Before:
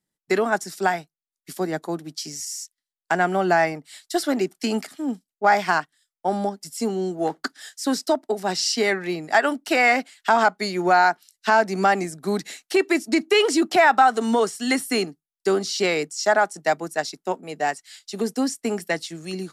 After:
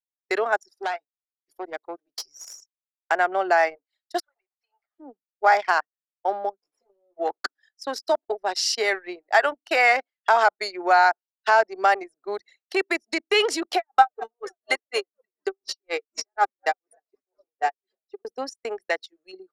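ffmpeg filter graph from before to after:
-filter_complex "[0:a]asettb=1/sr,asplit=3[s0][s1][s2];[s0]atrim=end=0.644[s3];[s1]atrim=start=0.64:end=2.61,asetpts=PTS-STARTPTS,afade=t=in:d=0.004:c=qsin,afade=t=out:st=1.966:d=0.004:c=qsin,highshelf=f=2500:g=5,aeval=exprs='(tanh(11.2*val(0)+0.55)-tanh(0.55))/11.2':c=same[s4];[s2]atrim=start=2.606[s5];[s3][s4]acrossfade=d=0.004:c1=hsin:c2=qsin[s6];[s6][s5]acrossfade=d=0.004:c1=qsin:c2=hsin,asettb=1/sr,asplit=3[s7][s8][s9];[s7]atrim=end=4.204[s10];[s8]atrim=start=4.2:end=4.99,asetpts=PTS-STARTPTS,afade=t=in:d=0.004:c=qsin,afade=t=out:st=0.786:d=0.004:c=qsin,highpass=f=840:w=0.5412,highpass=f=840:w=1.3066,highshelf=f=2300:g=-7.5,acompressor=threshold=0.00501:ratio=3:attack=3.2:release=140:knee=1:detection=peak[s11];[s9]atrim=start=4.986[s12];[s10][s11]acrossfade=d=0.004:c1=hsin:c2=qsin[s13];[s13][s12]acrossfade=d=0.004:c1=qsin:c2=hsin,asettb=1/sr,asplit=3[s14][s15][s16];[s14]atrim=end=6.614[s17];[s15]atrim=start=6.61:end=7.17,asetpts=PTS-STARTPTS,afade=t=in:d=0.004:c=qsin,afade=t=out:st=0.556:d=0.004:c=qsin,acompressor=threshold=0.0224:ratio=6:attack=3.2:release=140:knee=1:detection=peak,aeval=exprs='max(val(0),0)':c=same,asplit=2[s18][s19];[s19]adelay=20,volume=0.531[s20];[s18][s20]amix=inputs=2:normalize=0,atrim=end_sample=24696[s21];[s16]atrim=start=7.166[s22];[s17][s21]acrossfade=d=0.004:c1=hsin:c2=qsin[s23];[s23][s22]acrossfade=d=0.004:c1=qsin:c2=hsin,asettb=1/sr,asplit=3[s24][s25][s26];[s24]atrim=end=13.754[s27];[s25]atrim=start=13.75:end=18.25,asetpts=PTS-STARTPTS,afade=t=in:d=0.004:c=qsin,afade=t=out:st=4.496:d=0.004:c=qsin,aecho=1:1:2.5:0.56,atrim=end_sample=198450,asplit=6[s28][s29][s30][s31][s32][s33];[s29]adelay=325,afreqshift=-77,volume=0.158[s34];[s30]adelay=650,afreqshift=-154,volume=0.0891[s35];[s31]adelay=975,afreqshift=-231,volume=0.0495[s36];[s32]adelay=1300,afreqshift=-308,volume=0.0279[s37];[s33]adelay=1625,afreqshift=-385,volume=0.0157[s38];[s28][s34][s35][s36][s37][s38]amix=inputs=6:normalize=0,atrim=end_sample=198450,aeval=exprs='val(0)*pow(10,-39*(0.5-0.5*cos(2*PI*4.1*n/s))/20)':c=same[s39];[s26]atrim=start=18.246[s40];[s27][s39]acrossfade=d=0.004:c1=hsin:c2=qsin[s41];[s41][s40]acrossfade=d=0.004:c1=qsin:c2=hsin,highpass=f=430:w=0.5412,highpass=f=430:w=1.3066,equalizer=f=8000:w=3.5:g=-6.5,anlmdn=63.1"

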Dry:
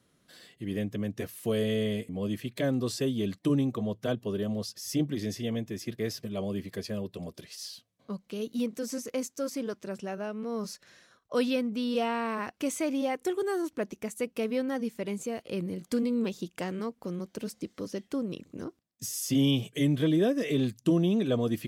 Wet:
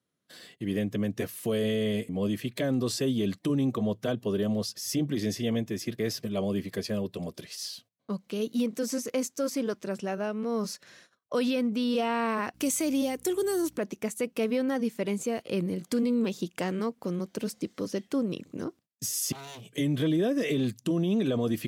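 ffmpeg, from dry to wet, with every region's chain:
-filter_complex "[0:a]asettb=1/sr,asplit=3[s0][s1][s2];[s0]atrim=end=12.544[s3];[s1]atrim=start=12.54:end=13.78,asetpts=PTS-STARTPTS,afade=t=in:d=0.004:c=qsin,afade=t=out:st=1.236:d=0.004:c=qsin,highshelf=f=5600:g=10,aeval=exprs='val(0)+0.00141*(sin(2*PI*60*n/s)+sin(2*PI*2*60*n/s)/2+sin(2*PI*3*60*n/s)/3+sin(2*PI*4*60*n/s)/4+sin(2*PI*5*60*n/s)/5)':c=same,acrossover=split=470|3000[s4][s5][s6];[s5]acompressor=threshold=0.00891:ratio=6:attack=3.2:release=140:knee=2.83:detection=peak[s7];[s4][s7][s6]amix=inputs=3:normalize=0[s8];[s2]atrim=start=13.776[s9];[s3][s8]acrossfade=d=0.004:c1=hsin:c2=qsin[s10];[s10][s9]acrossfade=d=0.004:c1=qsin:c2=hsin,asettb=1/sr,asplit=3[s11][s12][s13];[s11]atrim=end=19.324[s14];[s12]atrim=start=19.32:end=19.78,asetpts=PTS-STARTPTS,afade=t=in:d=0.004:c=qsin,afade=t=out:st=0.456:d=0.004:c=qsin,aeval=exprs='0.0376*(abs(mod(val(0)/0.0376+3,4)-2)-1)':c=same,acompressor=threshold=0.00398:ratio=4:attack=3.2:release=140:knee=1:detection=peak[s15];[s13]atrim=start=19.776[s16];[s14][s15]acrossfade=d=0.004:c1=hsin:c2=qsin[s17];[s17][s16]acrossfade=d=0.004:c1=qsin:c2=hsin,alimiter=limit=0.0668:level=0:latency=1:release=36,agate=range=0.126:threshold=0.00126:ratio=16:detection=peak,highpass=94,volume=1.58"

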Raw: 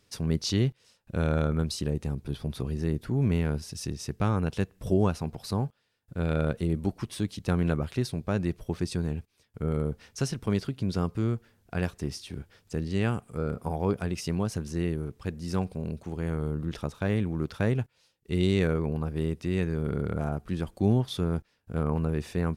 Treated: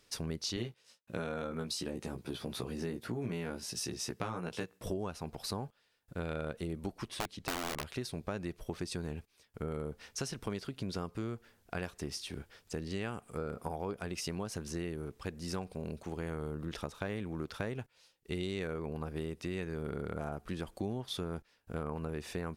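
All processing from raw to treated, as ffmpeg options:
-filter_complex "[0:a]asettb=1/sr,asplit=3[s0][s1][s2];[s0]atrim=end=0.564[s3];[s1]atrim=start=0.56:end=4.86,asetpts=PTS-STARTPTS,afade=t=in:d=0.004:c=qsin,afade=t=out:st=4.296:d=0.004:c=qsin,agate=range=0.0224:threshold=0.00126:ratio=3:release=100:detection=peak,highpass=110,asplit=2[s4][s5];[s5]adelay=17,volume=0.708[s6];[s4][s6]amix=inputs=2:normalize=0,atrim=end_sample=189630[s7];[s2]atrim=start=4.856[s8];[s3][s7]acrossfade=d=0.004:c1=hsin:c2=qsin[s9];[s9][s8]acrossfade=d=0.004:c1=qsin:c2=hsin,asettb=1/sr,asplit=3[s10][s11][s12];[s10]atrim=end=7.084[s13];[s11]atrim=start=7.08:end=7.84,asetpts=PTS-STARTPTS,afade=t=in:d=0.004:c=qsin,afade=t=out:st=0.756:d=0.004:c=qsin,lowpass=f=3800:p=1,aeval=exprs='(mod(11.9*val(0)+1,2)-1)/11.9':c=same[s14];[s12]atrim=start=7.836[s15];[s13][s14]acrossfade=d=0.004:c1=hsin:c2=qsin[s16];[s16][s15]acrossfade=d=0.004:c1=qsin:c2=hsin,equalizer=f=110:t=o:w=2.6:g=-9,acompressor=threshold=0.0158:ratio=5,volume=1.19"

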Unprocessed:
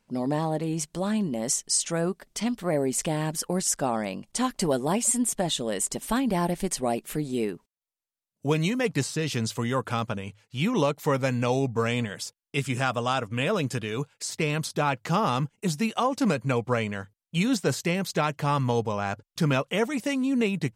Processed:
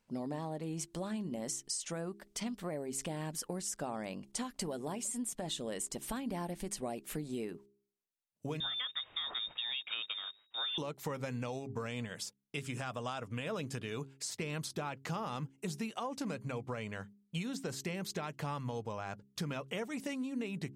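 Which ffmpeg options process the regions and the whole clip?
-filter_complex "[0:a]asettb=1/sr,asplit=3[s0][s1][s2];[s0]atrim=end=8.604[s3];[s1]atrim=start=8.6:end=10.78,asetpts=PTS-STARTPTS,afade=t=in:d=0.004:c=qsin,afade=t=out:st=2.176:d=0.004:c=qsin,acrusher=bits=8:dc=4:mix=0:aa=0.000001,lowpass=f=3200:t=q:w=0.5098,lowpass=f=3200:t=q:w=0.6013,lowpass=f=3200:t=q:w=0.9,lowpass=f=3200:t=q:w=2.563,afreqshift=-3800[s4];[s2]atrim=start=10.776[s5];[s3][s4]acrossfade=d=0.004:c1=hsin:c2=qsin[s6];[s6][s5]acrossfade=d=0.004:c1=qsin:c2=hsin,alimiter=limit=0.158:level=0:latency=1:release=128,acompressor=threshold=0.0355:ratio=6,bandreject=f=67.61:t=h:w=4,bandreject=f=135.22:t=h:w=4,bandreject=f=202.83:t=h:w=4,bandreject=f=270.44:t=h:w=4,bandreject=f=338.05:t=h:w=4,bandreject=f=405.66:t=h:w=4,volume=0.501"

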